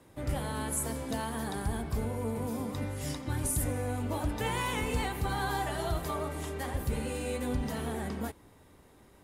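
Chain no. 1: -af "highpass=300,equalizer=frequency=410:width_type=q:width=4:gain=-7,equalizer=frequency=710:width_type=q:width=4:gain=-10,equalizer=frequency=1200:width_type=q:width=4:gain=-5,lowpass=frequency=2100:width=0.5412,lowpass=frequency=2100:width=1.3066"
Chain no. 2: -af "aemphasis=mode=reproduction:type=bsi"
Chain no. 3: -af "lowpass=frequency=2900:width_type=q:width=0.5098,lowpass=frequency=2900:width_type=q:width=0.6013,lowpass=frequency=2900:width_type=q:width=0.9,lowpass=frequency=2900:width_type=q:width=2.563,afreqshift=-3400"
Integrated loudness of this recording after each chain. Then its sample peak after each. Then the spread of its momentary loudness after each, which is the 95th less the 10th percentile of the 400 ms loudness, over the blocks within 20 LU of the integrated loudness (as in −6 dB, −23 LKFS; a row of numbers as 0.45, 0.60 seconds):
−41.0, −27.0, −30.5 LKFS; −26.0, −8.5, −19.0 dBFS; 6, 6, 4 LU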